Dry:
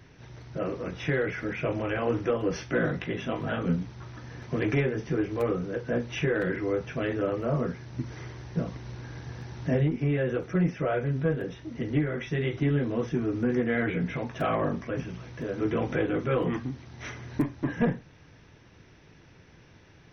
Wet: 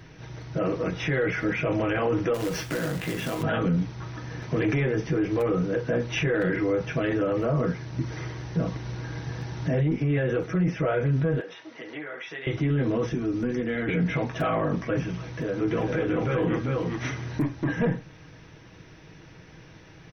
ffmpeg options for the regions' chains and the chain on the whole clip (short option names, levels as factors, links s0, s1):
-filter_complex "[0:a]asettb=1/sr,asplit=3[s0][s1][s2];[s0]atrim=end=2.344[s3];[s1]atrim=start=2.34:end=3.43,asetpts=PTS-STARTPTS,afade=t=in:d=0.004:c=qsin,afade=t=out:st=1.086:d=0.004:c=qsin,acompressor=threshold=0.0282:ratio=8:attack=3.2:release=140:knee=1:detection=peak,acrusher=bits=2:mode=log:mix=0:aa=0.000001[s4];[s2]atrim=start=3.426[s5];[s3][s4]acrossfade=d=0.004:c1=hsin:c2=qsin[s6];[s6][s5]acrossfade=d=0.004:c1=qsin:c2=hsin,asettb=1/sr,asplit=3[s7][s8][s9];[s7]atrim=end=11.404[s10];[s8]atrim=start=11.4:end=12.47,asetpts=PTS-STARTPTS,afade=t=in:d=0.004:c=qsin,afade=t=out:st=1.066:d=0.004:c=qsin,highpass=640,lowpass=5300,acompressor=threshold=0.00708:ratio=2:attack=3.2:release=140:knee=1:detection=peak[s11];[s9]atrim=start=12.466[s12];[s10][s11]acrossfade=d=0.004:c1=hsin:c2=qsin[s13];[s13][s12]acrossfade=d=0.004:c1=qsin:c2=hsin,asettb=1/sr,asplit=3[s14][s15][s16];[s14]atrim=end=13.134[s17];[s15]atrim=start=13.13:end=13.89,asetpts=PTS-STARTPTS,afade=t=in:d=0.004:c=qsin,afade=t=out:st=0.756:d=0.004:c=qsin,equalizer=f=130:t=o:w=0.76:g=-8.5,acrossover=split=270|3000[s18][s19][s20];[s19]acompressor=threshold=0.01:ratio=3:attack=3.2:release=140:knee=2.83:detection=peak[s21];[s18][s21][s20]amix=inputs=3:normalize=0[s22];[s16]atrim=start=13.886[s23];[s17][s22]acrossfade=d=0.004:c1=hsin:c2=qsin[s24];[s24][s23]acrossfade=d=0.004:c1=qsin:c2=hsin,asettb=1/sr,asplit=3[s25][s26][s27];[s25]atrim=end=15.284[s28];[s26]atrim=start=15.28:end=17.32,asetpts=PTS-STARTPTS,afade=t=in:d=0.004:c=qsin,afade=t=out:st=2.036:d=0.004:c=qsin,acompressor=threshold=0.0178:ratio=1.5:attack=3.2:release=140:knee=1:detection=peak,aecho=1:1:396:0.668,atrim=end_sample=89964[s29];[s27]atrim=start=17.316[s30];[s28][s29]acrossfade=d=0.004:c1=hsin:c2=qsin[s31];[s31][s30]acrossfade=d=0.004:c1=qsin:c2=hsin,aecho=1:1:6.3:0.34,alimiter=limit=0.0708:level=0:latency=1:release=22,volume=1.88"